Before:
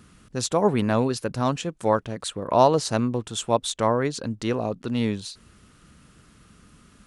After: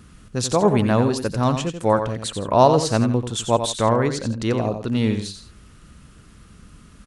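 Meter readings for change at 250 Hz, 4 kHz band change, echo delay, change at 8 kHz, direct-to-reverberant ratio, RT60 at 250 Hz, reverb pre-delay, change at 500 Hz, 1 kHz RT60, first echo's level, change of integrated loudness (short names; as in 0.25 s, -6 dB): +4.5 dB, +3.0 dB, 89 ms, +3.0 dB, none, none, none, +3.5 dB, none, -8.5 dB, +4.0 dB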